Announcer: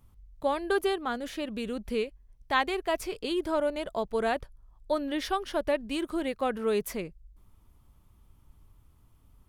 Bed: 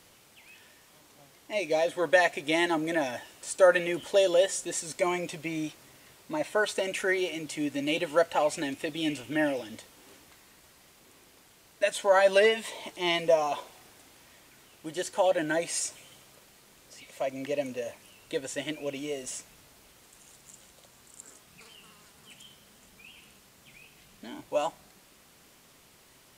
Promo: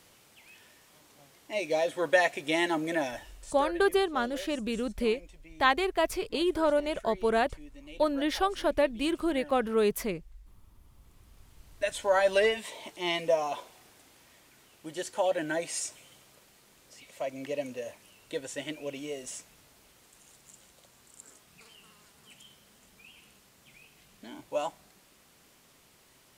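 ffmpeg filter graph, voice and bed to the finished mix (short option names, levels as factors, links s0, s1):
-filter_complex "[0:a]adelay=3100,volume=1.26[s0];[1:a]volume=5.62,afade=t=out:st=3.05:d=0.64:silence=0.125893,afade=t=in:st=10.82:d=1.17:silence=0.149624[s1];[s0][s1]amix=inputs=2:normalize=0"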